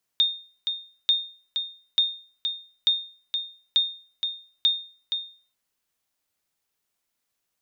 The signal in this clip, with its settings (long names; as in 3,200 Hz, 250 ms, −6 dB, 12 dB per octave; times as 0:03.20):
ping with an echo 3,660 Hz, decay 0.41 s, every 0.89 s, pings 6, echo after 0.47 s, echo −7 dB −13 dBFS